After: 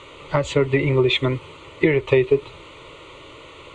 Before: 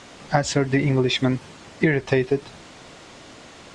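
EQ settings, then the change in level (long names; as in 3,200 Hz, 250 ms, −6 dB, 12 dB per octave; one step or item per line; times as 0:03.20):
low-pass filter 6,000 Hz 12 dB per octave
phaser with its sweep stopped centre 1,100 Hz, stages 8
+5.5 dB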